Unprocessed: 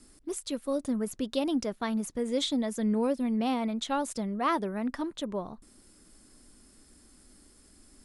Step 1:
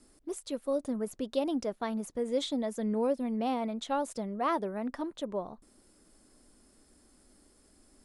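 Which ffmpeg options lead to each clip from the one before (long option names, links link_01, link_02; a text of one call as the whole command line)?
ffmpeg -i in.wav -af "equalizer=frequency=600:width_type=o:width=1.7:gain=7,volume=-6dB" out.wav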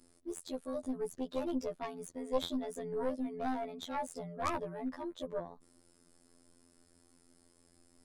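ffmpeg -i in.wav -af "afftfilt=real='hypot(re,im)*cos(PI*b)':imag='0':win_size=2048:overlap=0.75,aeval=exprs='0.158*(cos(1*acos(clip(val(0)/0.158,-1,1)))-cos(1*PI/2))+0.0562*(cos(4*acos(clip(val(0)/0.158,-1,1)))-cos(4*PI/2))+0.0112*(cos(6*acos(clip(val(0)/0.158,-1,1)))-cos(6*PI/2))':channel_layout=same" out.wav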